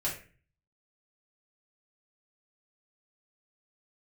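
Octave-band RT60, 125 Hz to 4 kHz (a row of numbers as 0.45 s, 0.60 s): 0.70 s, 0.55 s, 0.40 s, 0.35 s, 0.45 s, 0.30 s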